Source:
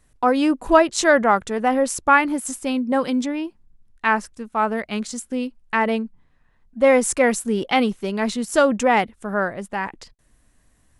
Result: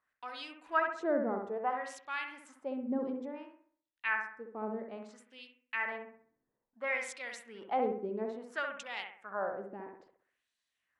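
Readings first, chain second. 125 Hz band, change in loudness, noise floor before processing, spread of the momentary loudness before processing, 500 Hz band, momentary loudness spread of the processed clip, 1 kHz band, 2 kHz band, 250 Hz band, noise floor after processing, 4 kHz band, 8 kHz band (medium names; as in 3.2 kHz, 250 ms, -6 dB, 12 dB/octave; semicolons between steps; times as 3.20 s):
no reading, -16.0 dB, -61 dBFS, 11 LU, -17.0 dB, 16 LU, -16.5 dB, -13.5 dB, -19.0 dB, under -85 dBFS, -17.5 dB, -26.0 dB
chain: treble shelf 10 kHz -3.5 dB; LFO band-pass sine 0.59 Hz 320–3900 Hz; on a send: bucket-brigade echo 65 ms, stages 1024, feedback 42%, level -4.5 dB; on the sum: trim -8 dB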